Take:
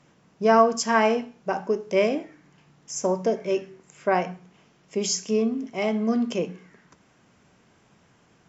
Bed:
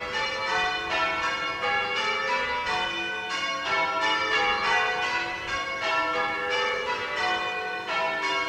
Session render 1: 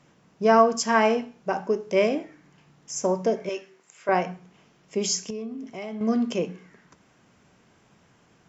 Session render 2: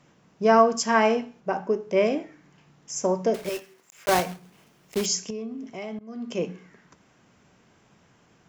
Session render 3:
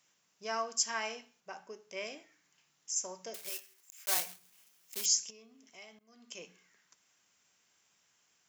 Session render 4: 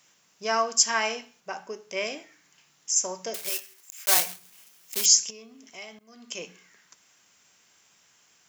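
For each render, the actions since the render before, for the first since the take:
0:03.49–0:04.09: high-pass filter 980 Hz 6 dB per octave; 0:05.30–0:06.01: downward compressor 3 to 1, threshold −34 dBFS
0:01.40–0:02.06: high-shelf EQ 3,200 Hz −7 dB; 0:03.34–0:05.06: one scale factor per block 3 bits; 0:05.99–0:06.43: fade in quadratic, from −22 dB
first-order pre-emphasis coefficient 0.97
level +10.5 dB

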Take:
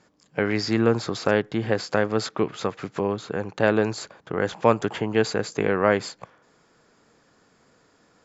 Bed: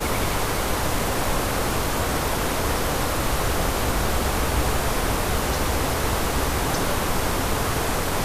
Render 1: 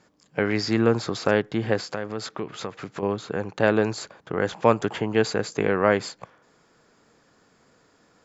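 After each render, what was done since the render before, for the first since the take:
0:01.79–0:03.03: downward compressor 2 to 1, threshold −31 dBFS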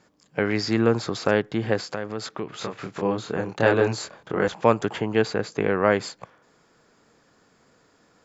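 0:02.59–0:04.48: double-tracking delay 26 ms −2.5 dB
0:05.22–0:05.85: high-frequency loss of the air 77 metres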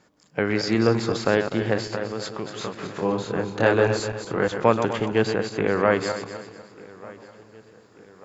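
feedback delay that plays each chunk backwards 125 ms, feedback 58%, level −8 dB
feedback echo with a low-pass in the loop 1,191 ms, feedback 53%, low-pass 4,800 Hz, level −22 dB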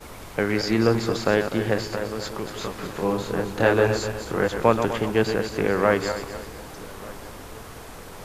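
mix in bed −17 dB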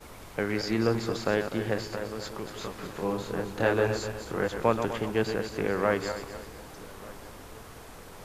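level −6 dB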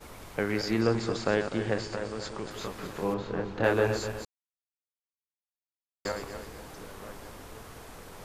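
0:00.81–0:02.51: linear-phase brick-wall low-pass 9,500 Hz
0:03.14–0:03.64: high-frequency loss of the air 150 metres
0:04.25–0:06.05: silence

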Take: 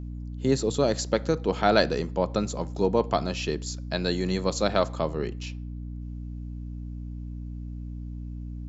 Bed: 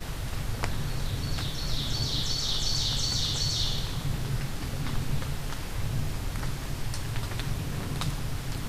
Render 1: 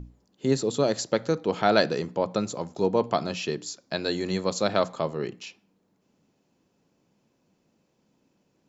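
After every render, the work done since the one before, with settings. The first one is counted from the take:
mains-hum notches 60/120/180/240/300 Hz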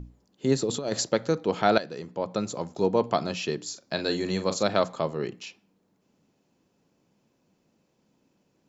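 0:00.62–0:01.09: compressor whose output falls as the input rises −26 dBFS, ratio −0.5
0:01.78–0:02.57: fade in, from −16 dB
0:03.64–0:04.63: double-tracking delay 41 ms −10.5 dB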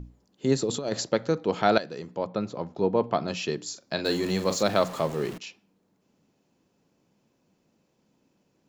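0:00.89–0:01.49: high-frequency loss of the air 56 metres
0:02.27–0:03.28: high-frequency loss of the air 210 metres
0:04.05–0:05.38: converter with a step at zero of −35.5 dBFS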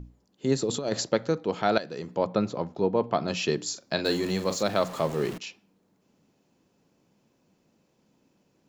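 speech leveller within 4 dB 0.5 s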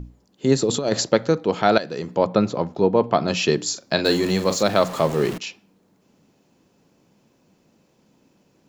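level +7 dB
brickwall limiter −2 dBFS, peak gain reduction 1.5 dB

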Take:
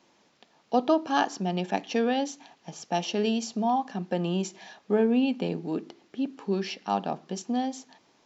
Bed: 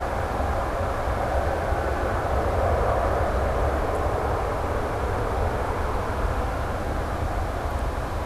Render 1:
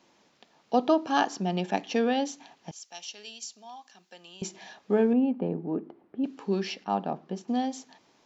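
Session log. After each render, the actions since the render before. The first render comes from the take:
0:02.71–0:04.42: first difference
0:05.13–0:06.24: low-pass filter 1,100 Hz
0:06.84–0:07.48: low-pass filter 1,500 Hz 6 dB per octave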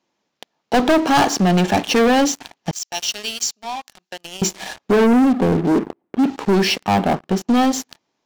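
leveller curve on the samples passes 5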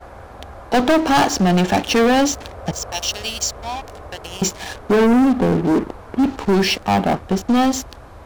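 mix in bed −12 dB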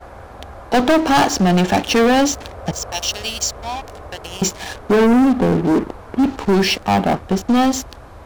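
level +1 dB

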